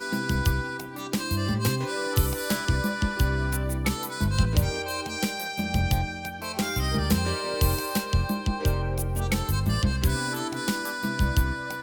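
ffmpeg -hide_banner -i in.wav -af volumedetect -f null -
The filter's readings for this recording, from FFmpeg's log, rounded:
mean_volume: -26.0 dB
max_volume: -8.4 dB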